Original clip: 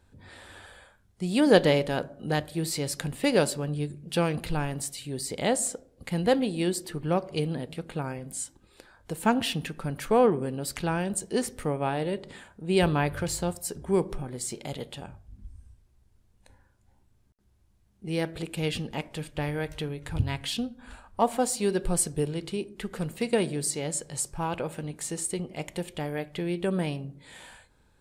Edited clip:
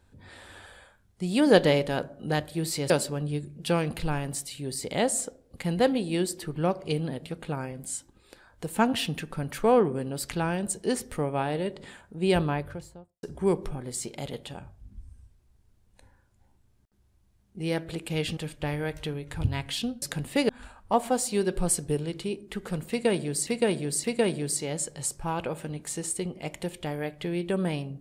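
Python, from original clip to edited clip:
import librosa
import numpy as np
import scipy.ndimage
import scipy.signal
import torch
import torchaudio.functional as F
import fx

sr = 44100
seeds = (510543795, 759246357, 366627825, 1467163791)

y = fx.studio_fade_out(x, sr, start_s=12.64, length_s=1.06)
y = fx.edit(y, sr, fx.move(start_s=2.9, length_s=0.47, to_s=20.77),
    fx.cut(start_s=18.84, length_s=0.28),
    fx.repeat(start_s=23.18, length_s=0.57, count=3), tone=tone)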